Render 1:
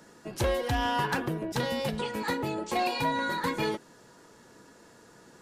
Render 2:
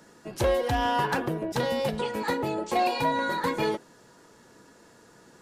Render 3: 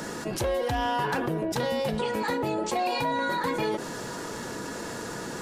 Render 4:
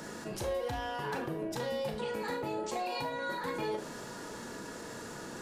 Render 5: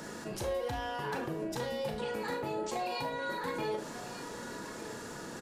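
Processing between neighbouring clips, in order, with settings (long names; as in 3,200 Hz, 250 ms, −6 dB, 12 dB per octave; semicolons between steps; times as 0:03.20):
dynamic equaliser 600 Hz, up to +5 dB, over −39 dBFS, Q 0.86
envelope flattener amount 70%; level −4.5 dB
four-comb reverb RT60 0.32 s, combs from 27 ms, DRR 5.5 dB; level −9 dB
single-tap delay 1,196 ms −13.5 dB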